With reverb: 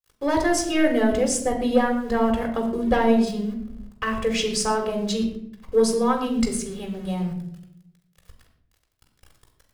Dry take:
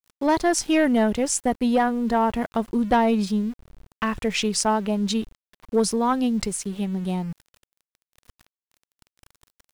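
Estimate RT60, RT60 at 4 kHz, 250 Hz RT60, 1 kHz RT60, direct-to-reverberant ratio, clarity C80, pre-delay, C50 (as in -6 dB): 0.70 s, 0.45 s, 1.0 s, 0.55 s, 2.0 dB, 9.5 dB, 4 ms, 7.5 dB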